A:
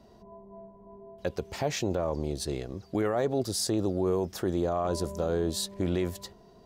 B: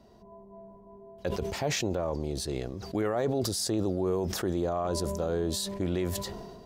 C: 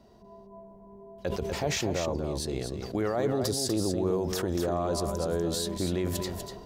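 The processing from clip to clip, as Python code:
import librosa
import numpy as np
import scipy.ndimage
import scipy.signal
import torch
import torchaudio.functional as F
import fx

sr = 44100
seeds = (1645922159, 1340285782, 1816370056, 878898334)

y1 = fx.sustainer(x, sr, db_per_s=35.0)
y1 = y1 * 10.0 ** (-1.5 / 20.0)
y2 = y1 + 10.0 ** (-6.5 / 20.0) * np.pad(y1, (int(244 * sr / 1000.0), 0))[:len(y1)]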